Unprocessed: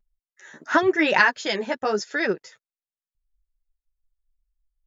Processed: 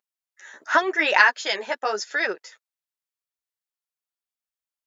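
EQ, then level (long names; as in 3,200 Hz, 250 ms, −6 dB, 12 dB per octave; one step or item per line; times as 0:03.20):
high-pass filter 600 Hz 12 dB per octave
+2.0 dB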